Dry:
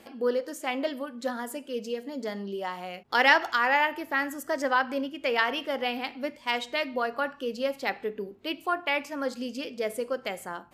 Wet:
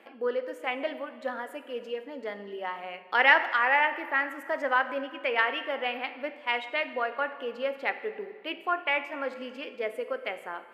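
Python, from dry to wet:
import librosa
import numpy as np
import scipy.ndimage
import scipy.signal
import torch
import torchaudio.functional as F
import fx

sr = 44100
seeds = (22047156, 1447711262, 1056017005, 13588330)

y = scipy.signal.sosfilt(scipy.signal.butter(2, 350.0, 'highpass', fs=sr, output='sos'), x)
y = fx.high_shelf_res(y, sr, hz=3700.0, db=-13.5, q=1.5)
y = fx.rev_plate(y, sr, seeds[0], rt60_s=2.0, hf_ratio=0.8, predelay_ms=0, drr_db=11.5)
y = y * 10.0 ** (-1.5 / 20.0)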